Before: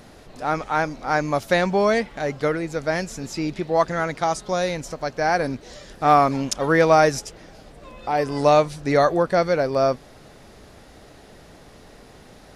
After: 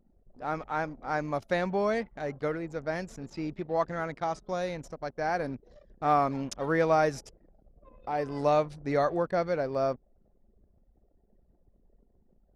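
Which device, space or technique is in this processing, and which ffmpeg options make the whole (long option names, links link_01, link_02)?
behind a face mask: -filter_complex "[0:a]asettb=1/sr,asplit=3[link_01][link_02][link_03];[link_01]atrim=end=3.304[link_04];[link_02]atrim=start=3.3:end=4.46,asetpts=PTS-STARTPTS,afade=type=in:duration=0.004:curve=qsin,afade=type=out:start_time=1.156:duration=0.004:curve=qsin,acrossover=split=6300[link_05][link_06];[link_06]acompressor=threshold=-47dB:ratio=4:attack=1:release=60[link_07];[link_05][link_07]amix=inputs=2:normalize=0[link_08];[link_03]atrim=start=4.456[link_09];[link_04][link_08]acrossfade=duration=0.004:curve1=hsin:curve2=qsin[link_10];[link_10][link_09]acrossfade=duration=0.004:curve1=qsin:curve2=hsin,anlmdn=1.58,highshelf=frequency=3000:gain=-7.5,volume=-8.5dB"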